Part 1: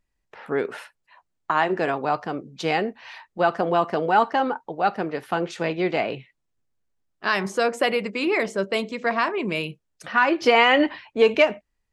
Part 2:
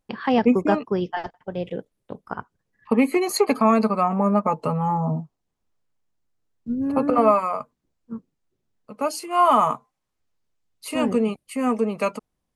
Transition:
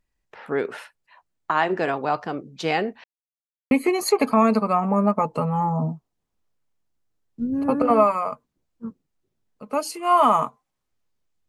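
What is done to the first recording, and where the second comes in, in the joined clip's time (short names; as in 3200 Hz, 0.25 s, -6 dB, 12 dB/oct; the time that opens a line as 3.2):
part 1
3.04–3.71 mute
3.71 switch to part 2 from 2.99 s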